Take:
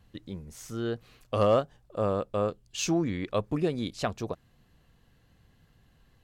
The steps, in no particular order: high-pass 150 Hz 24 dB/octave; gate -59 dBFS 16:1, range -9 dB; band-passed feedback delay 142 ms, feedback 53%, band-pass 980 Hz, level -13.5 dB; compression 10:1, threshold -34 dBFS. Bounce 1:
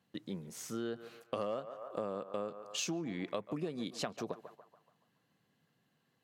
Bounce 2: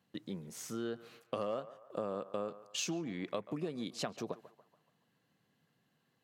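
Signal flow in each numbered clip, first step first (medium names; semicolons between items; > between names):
high-pass > gate > band-passed feedback delay > compression; compression > high-pass > gate > band-passed feedback delay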